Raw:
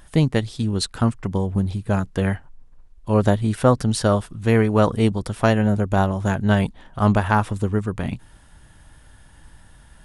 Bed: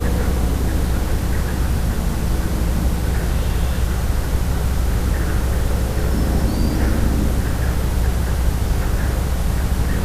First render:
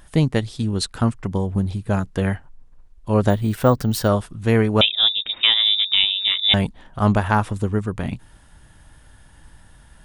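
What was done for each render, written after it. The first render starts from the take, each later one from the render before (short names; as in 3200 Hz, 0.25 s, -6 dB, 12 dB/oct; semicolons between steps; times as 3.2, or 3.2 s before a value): 3.3–4.08 careless resampling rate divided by 2×, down filtered, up hold; 4.81–6.54 inverted band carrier 3700 Hz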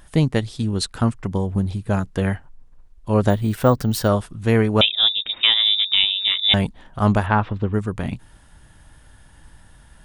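7.26–7.74 LPF 3700 Hz 24 dB/oct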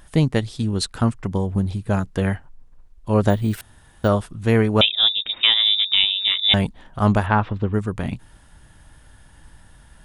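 3.61–4.04 room tone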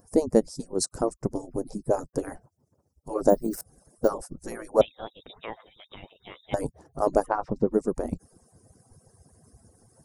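median-filter separation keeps percussive; EQ curve 190 Hz 0 dB, 540 Hz +5 dB, 3400 Hz -27 dB, 5200 Hz +2 dB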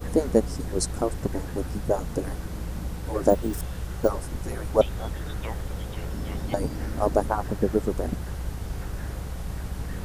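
add bed -13.5 dB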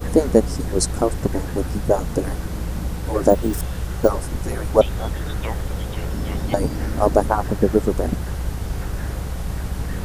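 gain +6.5 dB; limiter -1 dBFS, peak gain reduction 2.5 dB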